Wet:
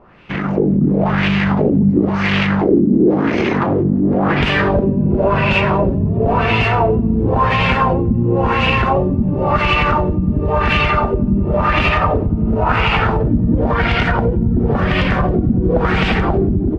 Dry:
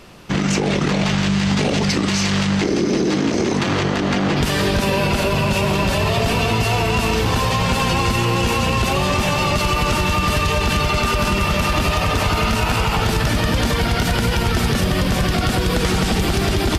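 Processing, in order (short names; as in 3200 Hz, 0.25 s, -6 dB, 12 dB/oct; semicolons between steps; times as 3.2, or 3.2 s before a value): AGC; LFO low-pass sine 0.95 Hz 230–2600 Hz; gain -5 dB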